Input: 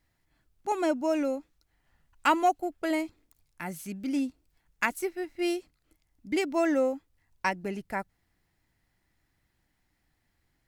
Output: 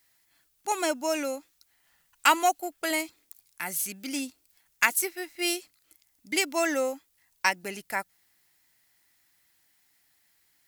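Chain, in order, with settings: tilt EQ +4 dB/octave; trim +2 dB

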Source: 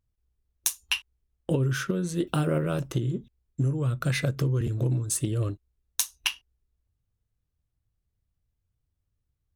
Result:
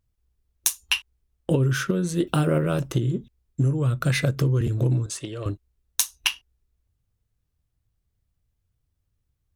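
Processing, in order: 5.06–5.46 s: three-band isolator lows -14 dB, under 420 Hz, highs -19 dB, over 6.2 kHz; trim +4 dB

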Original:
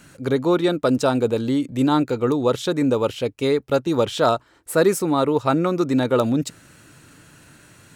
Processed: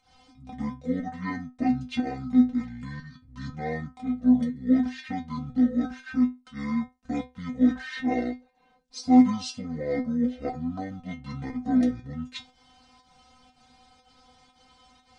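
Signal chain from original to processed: wide varispeed 0.524×; volume shaper 120 bpm, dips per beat 1, -19 dB, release 144 ms; inharmonic resonator 250 Hz, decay 0.24 s, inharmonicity 0.002; trim +5.5 dB

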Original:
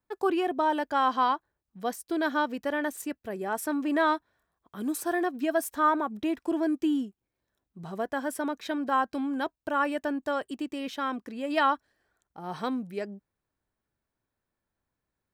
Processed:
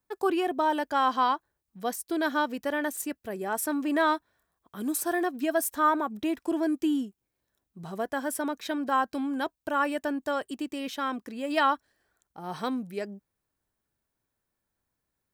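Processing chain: treble shelf 6 kHz +7.5 dB

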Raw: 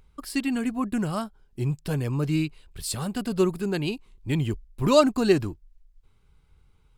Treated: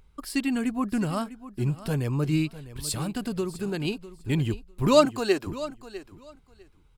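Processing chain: 2.99–3.85 s: compression 5:1, threshold -26 dBFS, peak gain reduction 9 dB; 5.05–5.47 s: high-pass 390 Hz 12 dB/octave; feedback delay 651 ms, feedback 17%, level -15.5 dB

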